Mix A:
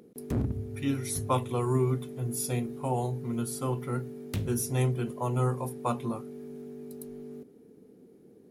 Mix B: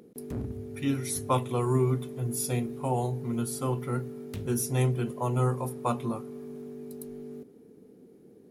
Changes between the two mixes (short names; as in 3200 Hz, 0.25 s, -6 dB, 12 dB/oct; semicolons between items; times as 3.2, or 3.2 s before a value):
background -6.0 dB; reverb: on, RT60 2.9 s